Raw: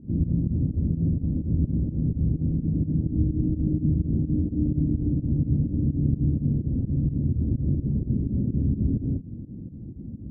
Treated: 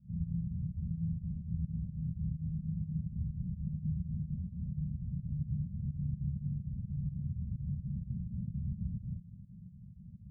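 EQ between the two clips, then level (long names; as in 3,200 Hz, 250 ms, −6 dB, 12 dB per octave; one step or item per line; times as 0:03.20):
formant resonators in series i
Chebyshev band-stop filter 180–580 Hz, order 3
0.0 dB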